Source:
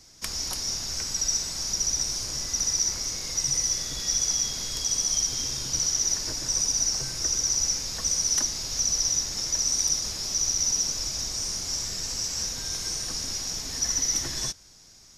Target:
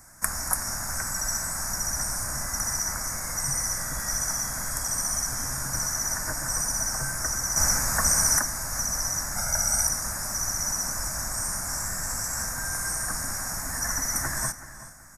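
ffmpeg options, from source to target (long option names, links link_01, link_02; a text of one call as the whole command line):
ffmpeg -i in.wav -filter_complex "[0:a]firequalizer=gain_entry='entry(220,0);entry(420,-11);entry(600,3);entry(1600,10);entry(3100,-27);entry(8500,9)':delay=0.05:min_phase=1,asplit=2[link_01][link_02];[link_02]adelay=376,lowpass=frequency=4700:poles=1,volume=-14dB,asplit=2[link_03][link_04];[link_04]adelay=376,lowpass=frequency=4700:poles=1,volume=0.31,asplit=2[link_05][link_06];[link_06]adelay=376,lowpass=frequency=4700:poles=1,volume=0.31[link_07];[link_03][link_05][link_07]amix=inputs=3:normalize=0[link_08];[link_01][link_08]amix=inputs=2:normalize=0,asettb=1/sr,asplit=3[link_09][link_10][link_11];[link_09]atrim=end=7.564[link_12];[link_10]atrim=start=7.56:end=8.38,asetpts=PTS-STARTPTS,afade=type=in:duration=0.004:curve=qsin,afade=type=out:start_time=0.816:duration=0.004:curve=qsin,acontrast=47[link_13];[link_11]atrim=start=8.376[link_14];[link_12][link_13]acrossfade=duration=0.004:curve1=hsin:curve2=qsin[link_15];[link_15][link_14]acrossfade=duration=0.004:curve1=qsin:curve2=hsin,asettb=1/sr,asplit=3[link_16][link_17][link_18];[link_16]atrim=end=9.364[link_19];[link_17]atrim=start=9.36:end=9.87,asetpts=PTS-STARTPTS,afade=type=in:duration=0.004:curve=qsin,afade=type=out:start_time=0.506:duration=0.004:curve=qsin,aecho=1:1:1.4:0.9,atrim=end_sample=22491[link_20];[link_18]atrim=start=9.866[link_21];[link_19][link_20]acrossfade=duration=0.004:curve1=hsin:curve2=qsin[link_22];[link_22][link_21]acrossfade=duration=0.004:curve1=qsin:curve2=hsin,asplit=2[link_23][link_24];[link_24]aecho=0:1:426:0.075[link_25];[link_23][link_25]amix=inputs=2:normalize=0,volume=4dB" out.wav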